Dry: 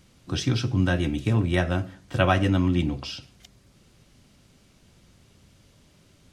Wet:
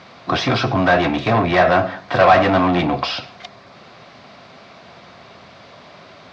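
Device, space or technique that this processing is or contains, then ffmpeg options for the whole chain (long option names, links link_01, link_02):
overdrive pedal into a guitar cabinet: -filter_complex "[0:a]asplit=2[link_01][link_02];[link_02]highpass=frequency=720:poles=1,volume=28dB,asoftclip=type=tanh:threshold=-8dB[link_03];[link_01][link_03]amix=inputs=2:normalize=0,lowpass=frequency=4600:poles=1,volume=-6dB,highpass=78,equalizer=frequency=310:width_type=q:width=4:gain=-4,equalizer=frequency=690:width_type=q:width=4:gain=10,equalizer=frequency=1100:width_type=q:width=4:gain=6,equalizer=frequency=3000:width_type=q:width=4:gain=-7,lowpass=frequency=4400:width=0.5412,lowpass=frequency=4400:width=1.3066"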